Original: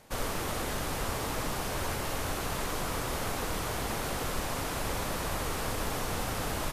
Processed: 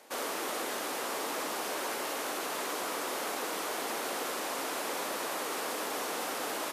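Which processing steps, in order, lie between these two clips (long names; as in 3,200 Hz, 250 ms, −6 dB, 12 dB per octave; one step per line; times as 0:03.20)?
high-pass filter 280 Hz 24 dB per octave
in parallel at −1 dB: brickwall limiter −31 dBFS, peak gain reduction 8.5 dB
on the sum: level −3.5 dB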